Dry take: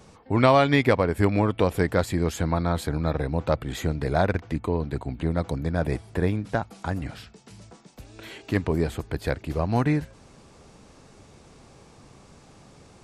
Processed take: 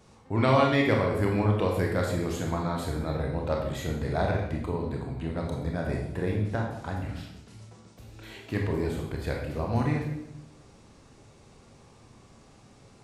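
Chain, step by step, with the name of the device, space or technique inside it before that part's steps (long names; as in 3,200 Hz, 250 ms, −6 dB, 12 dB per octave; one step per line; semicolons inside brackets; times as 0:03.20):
bathroom (convolution reverb RT60 0.85 s, pre-delay 22 ms, DRR −0.5 dB)
level −7 dB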